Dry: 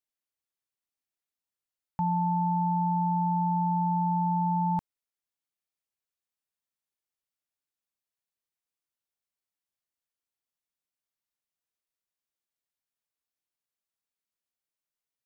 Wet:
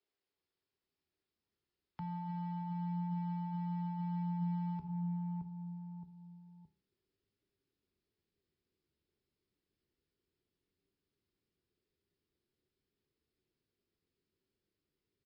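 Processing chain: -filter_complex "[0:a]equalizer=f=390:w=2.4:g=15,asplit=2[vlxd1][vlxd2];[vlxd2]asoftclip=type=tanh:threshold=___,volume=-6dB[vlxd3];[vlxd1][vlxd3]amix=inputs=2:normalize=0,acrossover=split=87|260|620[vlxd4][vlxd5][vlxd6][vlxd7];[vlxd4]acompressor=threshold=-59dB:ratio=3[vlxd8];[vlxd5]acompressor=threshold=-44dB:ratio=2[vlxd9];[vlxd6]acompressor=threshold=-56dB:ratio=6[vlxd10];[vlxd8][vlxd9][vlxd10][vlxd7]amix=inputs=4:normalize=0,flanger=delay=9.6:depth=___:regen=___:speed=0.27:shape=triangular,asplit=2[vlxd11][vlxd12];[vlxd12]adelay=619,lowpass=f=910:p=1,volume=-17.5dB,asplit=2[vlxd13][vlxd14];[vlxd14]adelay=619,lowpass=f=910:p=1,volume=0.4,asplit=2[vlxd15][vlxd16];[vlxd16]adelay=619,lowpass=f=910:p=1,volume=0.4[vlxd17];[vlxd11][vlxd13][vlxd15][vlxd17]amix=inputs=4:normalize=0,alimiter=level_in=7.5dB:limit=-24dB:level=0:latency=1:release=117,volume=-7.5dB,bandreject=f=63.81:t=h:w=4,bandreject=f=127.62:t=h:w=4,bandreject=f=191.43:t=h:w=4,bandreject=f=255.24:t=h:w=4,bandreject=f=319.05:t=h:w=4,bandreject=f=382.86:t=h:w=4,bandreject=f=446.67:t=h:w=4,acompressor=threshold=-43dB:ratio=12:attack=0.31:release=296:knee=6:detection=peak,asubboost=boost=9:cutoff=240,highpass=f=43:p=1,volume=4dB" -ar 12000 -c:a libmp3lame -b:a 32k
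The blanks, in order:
-37dB, 5, 75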